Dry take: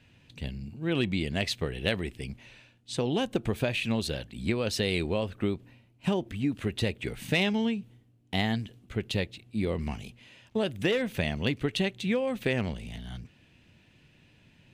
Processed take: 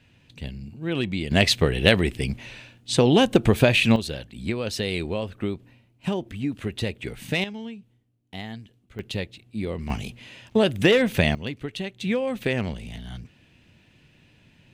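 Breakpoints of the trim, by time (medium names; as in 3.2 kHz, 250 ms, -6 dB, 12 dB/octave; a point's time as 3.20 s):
+1.5 dB
from 1.31 s +11 dB
from 3.96 s +1 dB
from 7.44 s -8 dB
from 8.99 s 0 dB
from 9.90 s +9 dB
from 11.35 s -3.5 dB
from 12.01 s +3 dB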